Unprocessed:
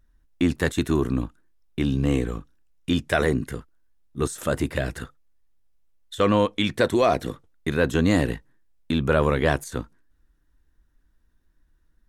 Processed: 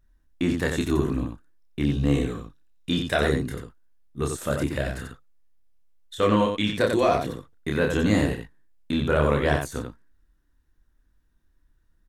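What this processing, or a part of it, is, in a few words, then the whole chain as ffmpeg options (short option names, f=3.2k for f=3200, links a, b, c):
slapback doubling: -filter_complex "[0:a]asettb=1/sr,asplit=3[a][b][c];[a]atrim=end=1.954[d];[b]atrim=start=1.95:end=3.55,asetpts=PTS-STARTPTS,afade=t=in:d=0.004:c=qsin,afade=t=out:st=1.596:d=0.004:c=qsin,equalizer=f=3.8k:w=5.4:g=7[e];[c]atrim=start=3.546[f];[d][e]acrossfade=d=0.004:c1=hsin:c2=qsin[g];[g][f]acrossfade=d=0.004:c1=qsin:c2=hsin,asplit=3[h][i][j];[i]adelay=28,volume=-3.5dB[k];[j]adelay=91,volume=-5dB[l];[h][k][l]amix=inputs=3:normalize=0,volume=-3.5dB"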